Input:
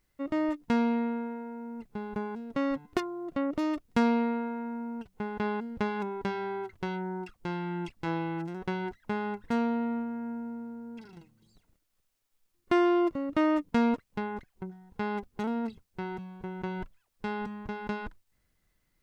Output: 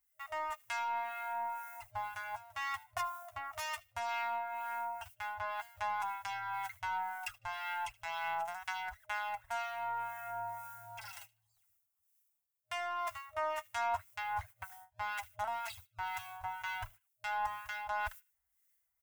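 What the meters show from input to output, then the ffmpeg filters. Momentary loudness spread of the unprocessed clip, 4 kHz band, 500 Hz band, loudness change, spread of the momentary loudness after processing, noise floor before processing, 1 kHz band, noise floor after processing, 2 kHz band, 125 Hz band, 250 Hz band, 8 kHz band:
14 LU, −0.5 dB, −13.0 dB, −7.5 dB, 7 LU, −76 dBFS, 0.0 dB, −81 dBFS, +0.5 dB, −16.5 dB, below −40 dB, can't be measured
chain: -filter_complex "[0:a]highpass=77,aemphasis=mode=production:type=75kf,agate=range=-20dB:threshold=-51dB:ratio=16:detection=peak,afftfilt=real='re*(1-between(b*sr/4096,110,620))':imag='im*(1-between(b*sr/4096,110,620))':win_size=4096:overlap=0.75,equalizer=frequency=4200:width_type=o:width=0.6:gain=-8.5,areverse,acompressor=threshold=-45dB:ratio=4,areverse,flanger=delay=4.6:depth=8.7:regen=-19:speed=0.11:shape=triangular,aeval=exprs='0.0178*(cos(1*acos(clip(val(0)/0.0178,-1,1)))-cos(1*PI/2))+0.000158*(cos(4*acos(clip(val(0)/0.0178,-1,1)))-cos(4*PI/2))+0.000224*(cos(5*acos(clip(val(0)/0.0178,-1,1)))-cos(5*PI/2))+0.000316*(cos(6*acos(clip(val(0)/0.0178,-1,1)))-cos(6*PI/2))+0.000398*(cos(7*acos(clip(val(0)/0.0178,-1,1)))-cos(7*PI/2))':channel_layout=same,acrossover=split=1300[link_01][link_02];[link_01]aeval=exprs='val(0)*(1-0.7/2+0.7/2*cos(2*PI*2*n/s))':channel_layout=same[link_03];[link_02]aeval=exprs='val(0)*(1-0.7/2-0.7/2*cos(2*PI*2*n/s))':channel_layout=same[link_04];[link_03][link_04]amix=inputs=2:normalize=0,acrossover=split=190|2200[link_05][link_06][link_07];[link_05]acrusher=samples=38:mix=1:aa=0.000001:lfo=1:lforange=60.8:lforate=0.56[link_08];[link_07]asplit=2[link_09][link_10];[link_10]adelay=76,lowpass=frequency=3400:poles=1,volume=-16dB,asplit=2[link_11][link_12];[link_12]adelay=76,lowpass=frequency=3400:poles=1,volume=0.32,asplit=2[link_13][link_14];[link_14]adelay=76,lowpass=frequency=3400:poles=1,volume=0.32[link_15];[link_09][link_11][link_13][link_15]amix=inputs=4:normalize=0[link_16];[link_08][link_06][link_16]amix=inputs=3:normalize=0,volume=15.5dB"

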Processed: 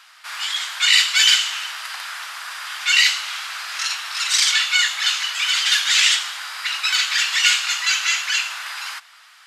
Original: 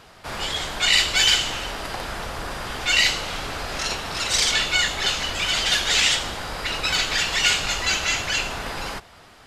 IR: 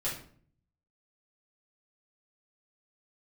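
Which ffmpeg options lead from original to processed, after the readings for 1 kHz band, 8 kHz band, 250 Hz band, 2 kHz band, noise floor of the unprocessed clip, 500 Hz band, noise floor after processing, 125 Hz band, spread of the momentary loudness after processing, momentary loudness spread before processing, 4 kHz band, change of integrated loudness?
−1.5 dB, +3.5 dB, below −40 dB, +3.5 dB, −48 dBFS, below −20 dB, −49 dBFS, below −40 dB, 15 LU, 13 LU, +3.5 dB, +4.0 dB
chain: -af "aeval=exprs='val(0)+0.0224*(sin(2*PI*50*n/s)+sin(2*PI*2*50*n/s)/2+sin(2*PI*3*50*n/s)/3+sin(2*PI*4*50*n/s)/4+sin(2*PI*5*50*n/s)/5)':channel_layout=same,highpass=frequency=1200:width=0.5412,highpass=frequency=1200:width=1.3066,volume=3.5dB"

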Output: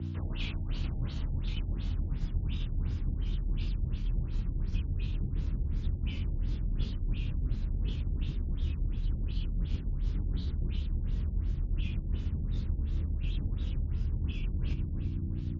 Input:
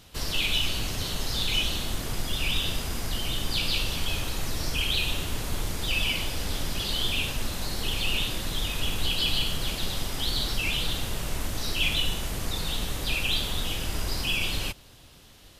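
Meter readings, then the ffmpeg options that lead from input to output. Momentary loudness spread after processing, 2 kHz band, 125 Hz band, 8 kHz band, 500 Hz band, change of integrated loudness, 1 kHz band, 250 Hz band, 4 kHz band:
1 LU, −21.5 dB, +2.0 dB, below −30 dB, −13.5 dB, −7.0 dB, −20.0 dB, −3.0 dB, −24.0 dB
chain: -filter_complex "[0:a]flanger=delay=18.5:depth=3.4:speed=0.6,bandreject=frequency=700:width=12,alimiter=limit=-23.5dB:level=0:latency=1:release=16,asplit=2[link_01][link_02];[link_02]adelay=341,lowpass=frequency=1500:poles=1,volume=-12.5dB,asplit=2[link_03][link_04];[link_04]adelay=341,lowpass=frequency=1500:poles=1,volume=0.54,asplit=2[link_05][link_06];[link_06]adelay=341,lowpass=frequency=1500:poles=1,volume=0.54,asplit=2[link_07][link_08];[link_08]adelay=341,lowpass=frequency=1500:poles=1,volume=0.54,asplit=2[link_09][link_10];[link_10]adelay=341,lowpass=frequency=1500:poles=1,volume=0.54,asplit=2[link_11][link_12];[link_12]adelay=341,lowpass=frequency=1500:poles=1,volume=0.54[link_13];[link_01][link_03][link_05][link_07][link_09][link_11][link_13]amix=inputs=7:normalize=0,asubboost=boost=7.5:cutoff=240,aeval=exprs='val(0)+0.0224*(sin(2*PI*60*n/s)+sin(2*PI*2*60*n/s)/2+sin(2*PI*3*60*n/s)/3+sin(2*PI*4*60*n/s)/4+sin(2*PI*5*60*n/s)/5)':channel_layout=same,areverse,acompressor=threshold=-29dB:ratio=8,areverse,highshelf=frequency=4100:gain=-8,afreqshift=29,afftfilt=real='re*lt(b*sr/1024,850*pow(7400/850,0.5+0.5*sin(2*PI*2.8*pts/sr)))':imag='im*lt(b*sr/1024,850*pow(7400/850,0.5+0.5*sin(2*PI*2.8*pts/sr)))':win_size=1024:overlap=0.75"

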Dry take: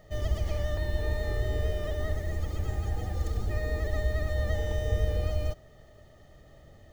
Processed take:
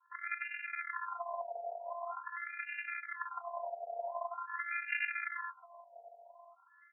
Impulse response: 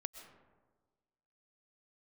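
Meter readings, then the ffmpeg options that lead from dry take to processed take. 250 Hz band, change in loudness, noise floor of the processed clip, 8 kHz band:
below −40 dB, −8.0 dB, −65 dBFS, can't be measured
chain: -filter_complex "[0:a]equalizer=frequency=110:width_type=o:width=1.6:gain=-9.5,aresample=8000,acrusher=samples=40:mix=1:aa=0.000001:lfo=1:lforange=24:lforate=1.4,aresample=44100,adynamicequalizer=threshold=0.001:dfrequency=2100:dqfactor=1.2:tfrequency=2100:tqfactor=1.2:attack=5:release=100:ratio=0.375:range=3:mode=boostabove:tftype=bell,afftfilt=real='hypot(re,im)*cos(PI*b)':imag='0':win_size=512:overlap=0.75,asplit=2[link_01][link_02];[link_02]aecho=0:1:1035|2070|3105:0.133|0.0467|0.0163[link_03];[link_01][link_03]amix=inputs=2:normalize=0,afftfilt=real='re*between(b*sr/1024,640*pow(2000/640,0.5+0.5*sin(2*PI*0.45*pts/sr))/1.41,640*pow(2000/640,0.5+0.5*sin(2*PI*0.45*pts/sr))*1.41)':imag='im*between(b*sr/1024,640*pow(2000/640,0.5+0.5*sin(2*PI*0.45*pts/sr))/1.41,640*pow(2000/640,0.5+0.5*sin(2*PI*0.45*pts/sr))*1.41)':win_size=1024:overlap=0.75,volume=10.5dB"

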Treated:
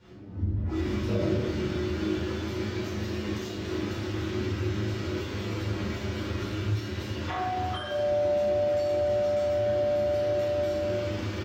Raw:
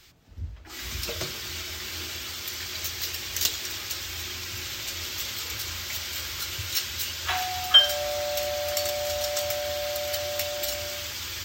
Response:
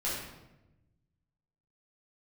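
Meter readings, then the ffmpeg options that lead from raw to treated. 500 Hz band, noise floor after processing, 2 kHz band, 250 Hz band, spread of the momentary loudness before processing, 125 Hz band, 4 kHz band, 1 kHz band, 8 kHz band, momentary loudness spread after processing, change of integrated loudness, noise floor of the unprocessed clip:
+6.5 dB, −35 dBFS, −5.5 dB, +17.5 dB, 7 LU, +11.0 dB, −16.0 dB, 0.0 dB, −18.5 dB, 7 LU, −2.0 dB, −41 dBFS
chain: -filter_complex "[0:a]acontrast=82,aecho=1:1:10|38:0.631|0.473[link_01];[1:a]atrim=start_sample=2205[link_02];[link_01][link_02]afir=irnorm=-1:irlink=0,acompressor=threshold=-19dB:ratio=6,bandpass=frequency=250:width_type=q:width=1.4:csg=0,volume=6dB"

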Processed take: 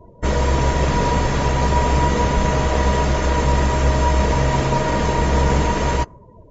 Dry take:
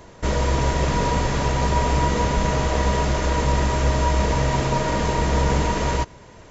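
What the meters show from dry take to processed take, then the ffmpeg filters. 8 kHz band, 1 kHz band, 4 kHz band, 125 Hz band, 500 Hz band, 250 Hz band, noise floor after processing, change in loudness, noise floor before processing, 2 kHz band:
can't be measured, +3.0 dB, +1.0 dB, +3.0 dB, +3.0 dB, +3.0 dB, −45 dBFS, +3.0 dB, −45 dBFS, +2.5 dB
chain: -af "afftdn=noise_reduction=33:noise_floor=-40,volume=3dB"

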